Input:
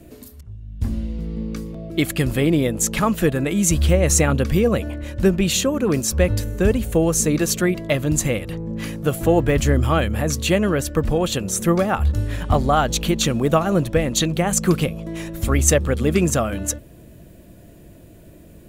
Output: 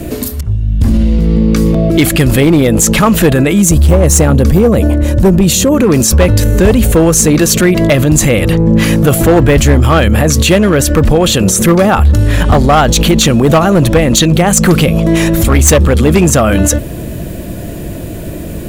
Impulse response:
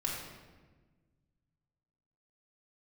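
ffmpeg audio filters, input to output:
-filter_complex "[0:a]asettb=1/sr,asplit=3[link_01][link_02][link_03];[link_01]atrim=end=3.624[link_04];[link_02]atrim=start=3.62:end=5.72,asetpts=PTS-STARTPTS,afade=type=in:duration=0.004:curve=qsin,afade=type=out:start_time=2.096:duration=0.004:curve=qsin,equalizer=frequency=2400:width_type=o:width=2.3:gain=-9.5[link_05];[link_03]atrim=start=5.716[link_06];[link_04][link_05]acrossfade=duration=0.004:curve1=hsin:curve2=qsin[link_07];[link_07][link_06]acrossfade=duration=0.004:curve1=qsin:curve2=hsin,volume=13dB,asoftclip=hard,volume=-13dB,alimiter=level_in=24dB:limit=-1dB:release=50:level=0:latency=1,volume=-1dB"

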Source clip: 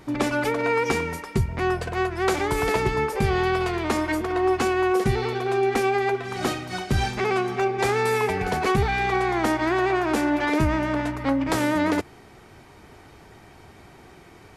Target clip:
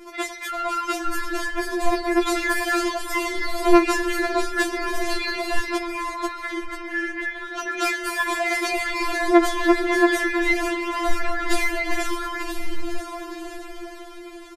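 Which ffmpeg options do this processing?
ffmpeg -i in.wav -filter_complex "[0:a]dynaudnorm=framelen=200:gausssize=13:maxgain=11.5dB,asettb=1/sr,asplit=3[link_01][link_02][link_03];[link_01]atrim=end=5.774[link_04];[link_02]atrim=start=5.77:end=7.57,asetpts=PTS-STARTPTS,afade=type=in:duration=0.004:curve=qsin,afade=type=out:start_time=1.796:duration=0.004:curve=qsin,bandpass=frequency=1800:width_type=q:width=7.5:csg=0[link_05];[link_03]atrim=start=7.566[link_06];[link_04][link_05]acrossfade=duration=0.004:curve1=hsin:curve2=qsin[link_07];[link_07][link_06]acrossfade=duration=0.004:curve1=qsin:curve2=hsin,acompressor=threshold=-24dB:ratio=2,asplit=8[link_08][link_09][link_10][link_11][link_12][link_13][link_14][link_15];[link_09]adelay=491,afreqshift=-150,volume=-4dB[link_16];[link_10]adelay=982,afreqshift=-300,volume=-9.4dB[link_17];[link_11]adelay=1473,afreqshift=-450,volume=-14.7dB[link_18];[link_12]adelay=1964,afreqshift=-600,volume=-20.1dB[link_19];[link_13]adelay=2455,afreqshift=-750,volume=-25.4dB[link_20];[link_14]adelay=2946,afreqshift=-900,volume=-30.8dB[link_21];[link_15]adelay=3437,afreqshift=-1050,volume=-36.1dB[link_22];[link_08][link_16][link_17][link_18][link_19][link_20][link_21][link_22]amix=inputs=8:normalize=0,afftfilt=real='re*4*eq(mod(b,16),0)':imag='im*4*eq(mod(b,16),0)':win_size=2048:overlap=0.75,volume=5dB" out.wav

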